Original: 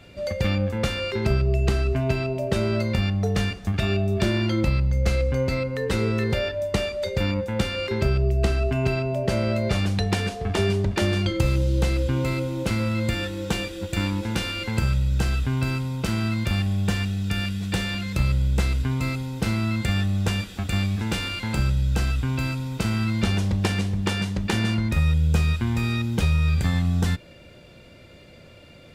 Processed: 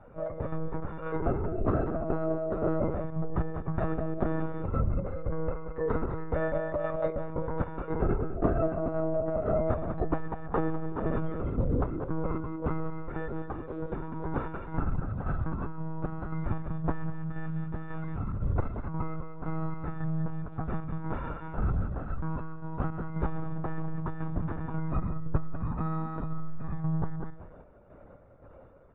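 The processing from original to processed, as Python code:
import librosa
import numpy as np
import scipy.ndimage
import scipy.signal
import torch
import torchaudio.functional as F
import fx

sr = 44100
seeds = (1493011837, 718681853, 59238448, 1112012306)

y = fx.curve_eq(x, sr, hz=(260.0, 1200.0, 2800.0), db=(0, 8, -26))
y = fx.chopper(y, sr, hz=1.9, depth_pct=60, duty_pct=50)
y = fx.echo_feedback(y, sr, ms=193, feedback_pct=20, wet_db=-7.5)
y = fx.lpc_monotone(y, sr, seeds[0], pitch_hz=160.0, order=16)
y = fx.transformer_sat(y, sr, knee_hz=51.0)
y = y * librosa.db_to_amplitude(-4.5)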